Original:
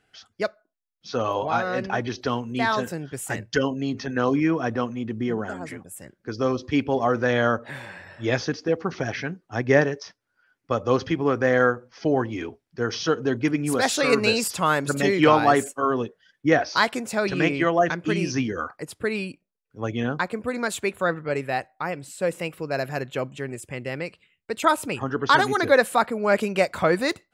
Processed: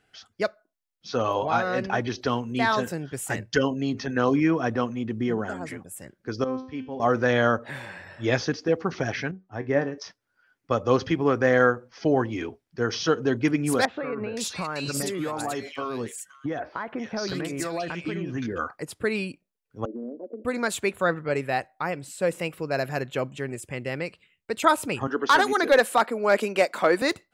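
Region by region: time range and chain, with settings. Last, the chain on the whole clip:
6.44–7.00 s: low-pass 5.6 kHz 24 dB/octave + dynamic bell 3.5 kHz, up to -5 dB, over -44 dBFS, Q 0.78 + feedback comb 260 Hz, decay 0.49 s, mix 80%
9.31–9.98 s: low-pass 1.5 kHz 6 dB/octave + feedback comb 94 Hz, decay 0.19 s, mix 70%
13.85–18.58 s: compression 12:1, threshold -25 dBFS + bands offset in time lows, highs 520 ms, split 2.1 kHz
19.85–20.45 s: CVSD coder 64 kbps + Chebyshev band-pass 230–620 Hz, order 4 + compression, threshold -31 dBFS
25.07–27.02 s: high-pass 230 Hz 24 dB/octave + hard clipper -10.5 dBFS
whole clip: none

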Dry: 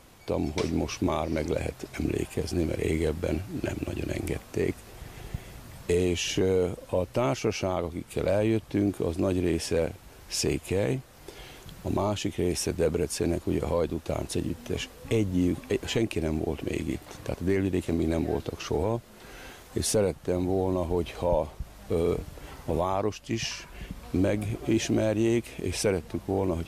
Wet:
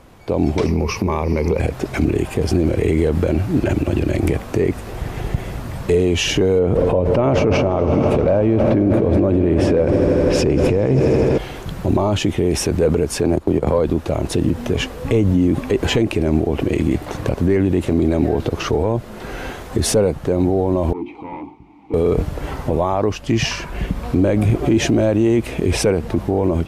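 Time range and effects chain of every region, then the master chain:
0.66–1.60 s: rippled EQ curve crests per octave 0.84, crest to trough 11 dB + compression 12:1, threshold -30 dBFS
6.59–11.38 s: low-pass 1.6 kHz 6 dB/octave + echo with a slow build-up 80 ms, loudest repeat 5, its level -18 dB + level flattener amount 70%
13.22–13.79 s: transient shaper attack +9 dB, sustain -12 dB + three bands compressed up and down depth 40%
20.93–21.94 s: hum notches 50/100/150/200/250/300/350/400 Hz + hard clipper -25.5 dBFS + vowel filter u
whole clip: treble shelf 2.5 kHz -11.5 dB; level rider gain up to 9 dB; peak limiter -16 dBFS; trim +9 dB

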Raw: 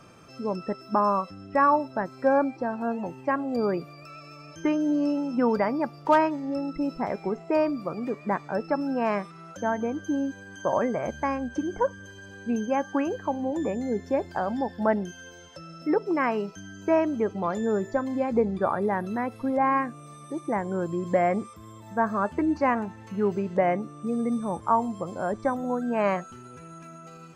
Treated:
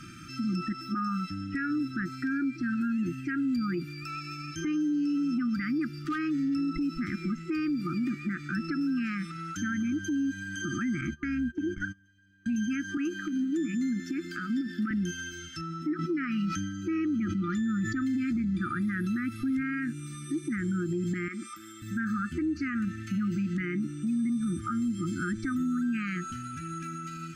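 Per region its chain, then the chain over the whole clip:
11.01–12.46 s: gate -38 dBFS, range -25 dB + treble shelf 4.1 kHz -10.5 dB
12.97–14.91 s: high-pass 170 Hz 24 dB/octave + compression 3:1, threshold -29 dBFS
15.61–18.02 s: treble shelf 5.7 kHz -9 dB + comb of notches 530 Hz + decay stretcher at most 54 dB/s
21.28–21.82 s: peaking EQ 1.1 kHz +9 dB 0.59 oct + compression 3:1, threshold -27 dBFS + high-pass 410 Hz
whole clip: FFT band-reject 360–1200 Hz; compression, threshold -31 dBFS; peak limiter -31 dBFS; trim +7.5 dB

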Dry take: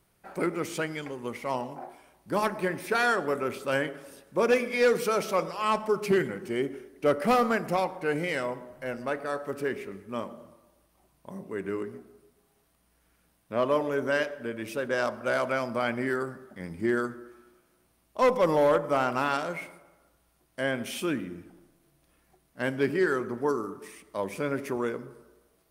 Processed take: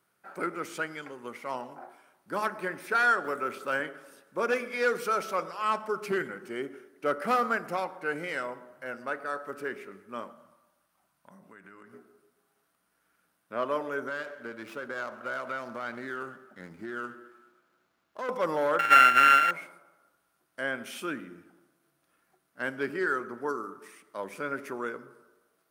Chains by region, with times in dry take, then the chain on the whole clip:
3.24–3.80 s: block-companded coder 7-bit + three bands compressed up and down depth 40%
10.31–11.93 s: peaking EQ 390 Hz -11 dB 0.71 oct + compression 12:1, threshold -42 dBFS
14.08–18.29 s: compression, threshold -28 dBFS + sliding maximum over 5 samples
18.79–19.51 s: sorted samples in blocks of 32 samples + high-order bell 2.1 kHz +14.5 dB 1.3 oct
whole clip: Bessel high-pass 210 Hz, order 2; peaking EQ 1.4 kHz +9.5 dB 0.55 oct; trim -5.5 dB

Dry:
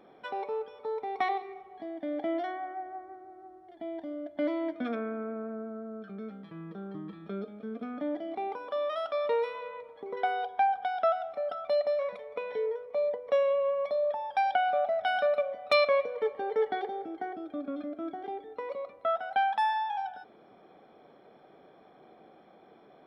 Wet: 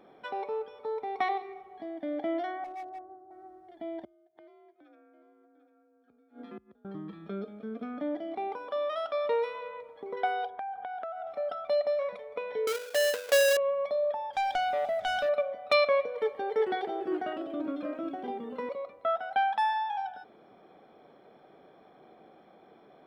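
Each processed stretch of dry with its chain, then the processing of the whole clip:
2.64–3.31 s: low-pass 1.1 kHz 24 dB/octave + hard clipper -37.5 dBFS + three bands expanded up and down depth 70%
4.04–6.85 s: delay 747 ms -11.5 dB + inverted gate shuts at -34 dBFS, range -26 dB + frequency shift +47 Hz
10.50–11.27 s: low-pass 2.1 kHz + compression 10:1, threshold -34 dBFS
12.67–13.57 s: square wave that keeps the level + high-pass 350 Hz
14.33–15.29 s: peaking EQ 890 Hz -8 dB 2.9 oct + waveshaping leveller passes 2
16.14–18.69 s: treble shelf 3.8 kHz +7.5 dB + ever faster or slower copies 432 ms, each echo -3 st, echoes 2, each echo -6 dB
whole clip: none

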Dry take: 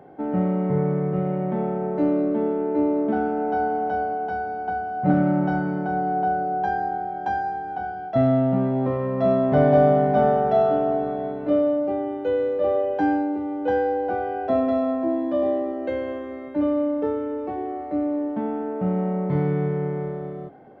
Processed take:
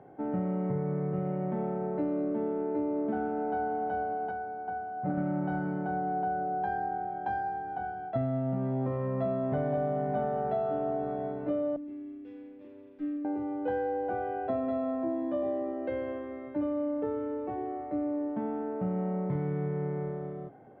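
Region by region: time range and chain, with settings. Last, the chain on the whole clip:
4.31–5.18 s: low-pass 1 kHz 6 dB/octave + tilt EQ +2 dB/octave
11.76–13.25 s: dynamic bell 530 Hz, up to -4 dB, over -32 dBFS, Q 2.1 + vowel filter i + sliding maximum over 9 samples
whole clip: low-pass 2.8 kHz 12 dB/octave; peaking EQ 120 Hz +9 dB 0.22 oct; compression, threshold -21 dBFS; trim -6 dB

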